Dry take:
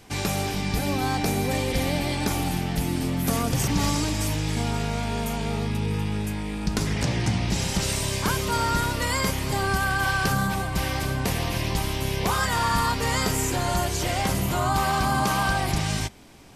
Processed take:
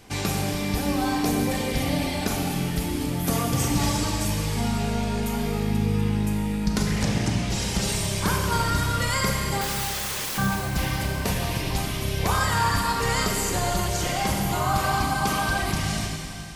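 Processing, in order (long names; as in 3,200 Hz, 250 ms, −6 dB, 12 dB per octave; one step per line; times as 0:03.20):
0:09.61–0:10.38: wrap-around overflow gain 25 dB
reverb reduction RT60 1.7 s
four-comb reverb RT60 2.8 s, combs from 30 ms, DRR 0 dB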